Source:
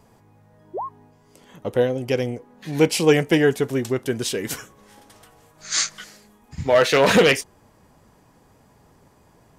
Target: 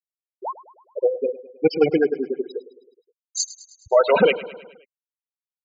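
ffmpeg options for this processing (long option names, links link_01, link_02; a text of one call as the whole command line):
ffmpeg -i in.wav -af "asuperstop=centerf=1800:order=4:qfactor=5.2,lowshelf=frequency=400:gain=-11.5,afftfilt=real='re*gte(hypot(re,im),0.2)':imag='im*gte(hypot(re,im),0.2)':win_size=1024:overlap=0.75,atempo=1.7,equalizer=frequency=2900:width_type=o:width=1.9:gain=-7,aecho=1:1:105|210|315|420|525:0.15|0.0853|0.0486|0.0277|0.0158,volume=6dB" out.wav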